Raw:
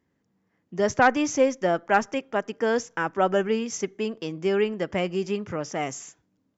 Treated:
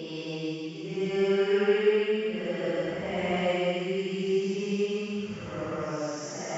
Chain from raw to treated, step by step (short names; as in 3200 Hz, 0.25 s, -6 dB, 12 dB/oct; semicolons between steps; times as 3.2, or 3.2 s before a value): Paulstretch 4.2×, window 0.25 s, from 4.18; thin delay 0.31 s, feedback 55%, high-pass 2100 Hz, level -5 dB; gain -2 dB